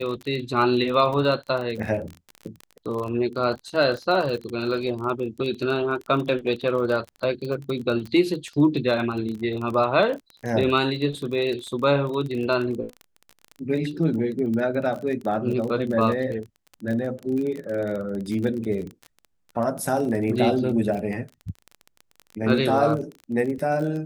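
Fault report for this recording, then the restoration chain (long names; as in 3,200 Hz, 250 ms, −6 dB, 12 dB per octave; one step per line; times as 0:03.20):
surface crackle 24 per second −29 dBFS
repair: click removal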